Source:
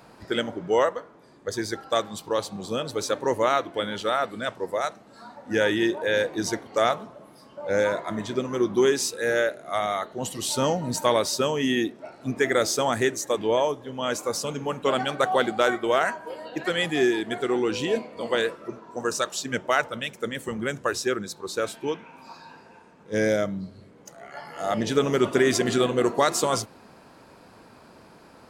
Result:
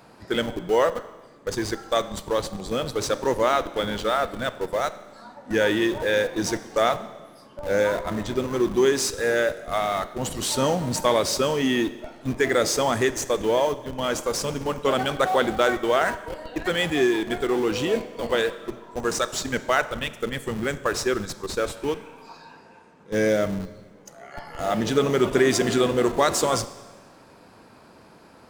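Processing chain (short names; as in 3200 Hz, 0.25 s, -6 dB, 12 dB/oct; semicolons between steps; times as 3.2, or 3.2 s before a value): in parallel at -10 dB: Schmitt trigger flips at -29.5 dBFS; on the sum: Schroeder reverb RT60 1.3 s, combs from 30 ms, DRR 14.5 dB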